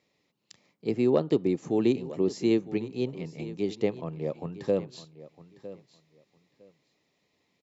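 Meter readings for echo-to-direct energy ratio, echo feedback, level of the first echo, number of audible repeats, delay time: -16.0 dB, 19%, -16.0 dB, 2, 957 ms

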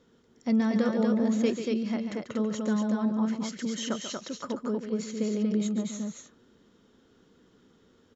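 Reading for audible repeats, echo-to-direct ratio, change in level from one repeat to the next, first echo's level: 2, -2.5 dB, no regular repeats, -9.5 dB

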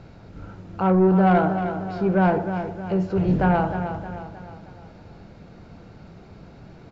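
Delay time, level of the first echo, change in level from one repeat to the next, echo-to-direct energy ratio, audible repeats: 311 ms, -9.0 dB, -6.5 dB, -8.0 dB, 4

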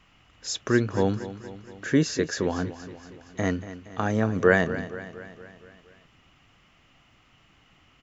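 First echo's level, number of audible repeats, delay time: -14.0 dB, 5, 234 ms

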